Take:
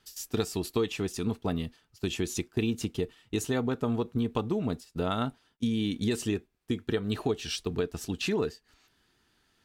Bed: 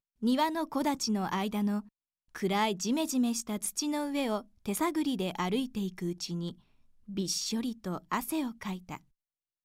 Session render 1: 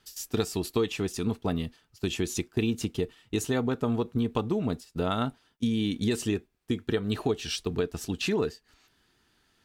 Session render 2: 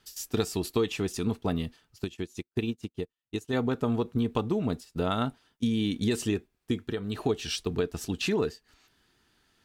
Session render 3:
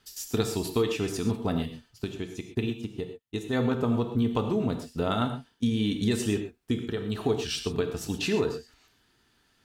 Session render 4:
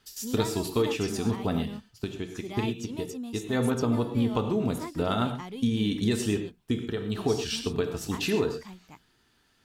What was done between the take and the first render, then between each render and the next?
gain +1.5 dB
2.04–3.53 upward expander 2.5:1, over -47 dBFS; 6.77–7.24 compressor 1.5:1, threshold -35 dBFS
non-linear reverb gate 0.15 s flat, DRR 5.5 dB
add bed -9 dB

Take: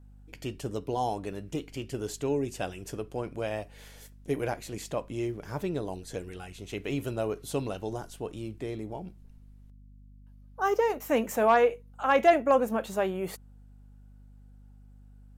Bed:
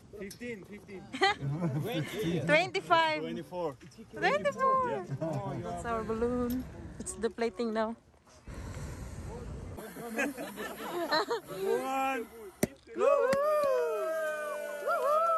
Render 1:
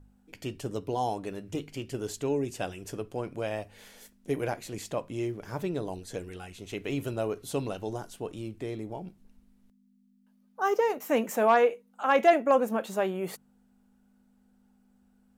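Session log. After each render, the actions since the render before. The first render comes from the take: de-hum 50 Hz, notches 3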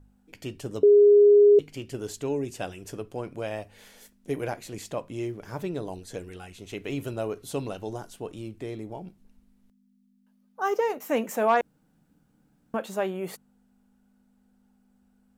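0.83–1.59 bleep 411 Hz -12 dBFS; 11.61–12.74 room tone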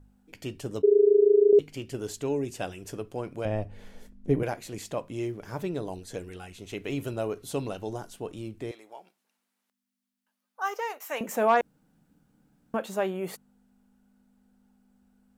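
0.81–1.53 AM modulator 26 Hz, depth 75%; 3.45–4.43 tilt -3.5 dB/oct; 8.71–11.21 HPF 840 Hz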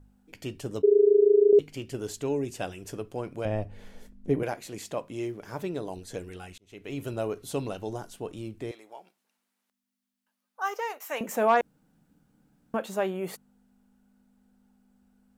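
4.29–5.96 low shelf 97 Hz -10 dB; 6.58–7.14 fade in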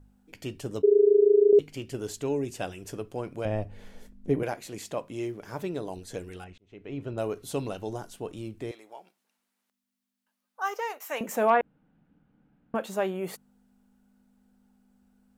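6.44–7.18 tape spacing loss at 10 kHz 25 dB; 11.5–12.75 LPF 3000 Hz 24 dB/oct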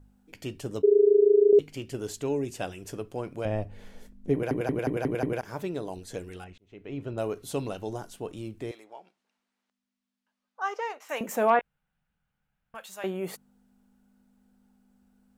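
4.33 stutter in place 0.18 s, 6 plays; 8.84–11.09 air absorption 77 m; 11.59–13.04 passive tone stack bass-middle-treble 10-0-10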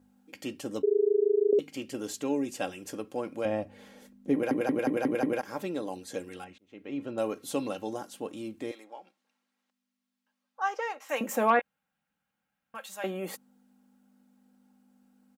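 HPF 170 Hz 12 dB/oct; comb 3.7 ms, depth 52%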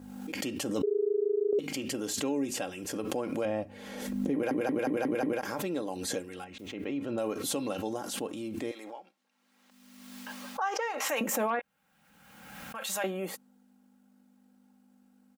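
limiter -22 dBFS, peak gain reduction 9.5 dB; backwards sustainer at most 37 dB/s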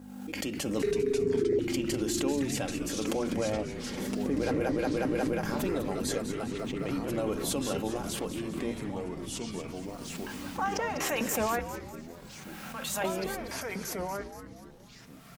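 on a send: frequency-shifting echo 0.199 s, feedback 47%, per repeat -150 Hz, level -10.5 dB; on the sum: echoes that change speed 0.426 s, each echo -3 st, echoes 3, each echo -6 dB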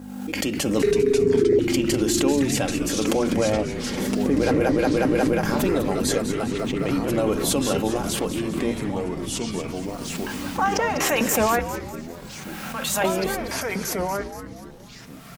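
gain +9 dB

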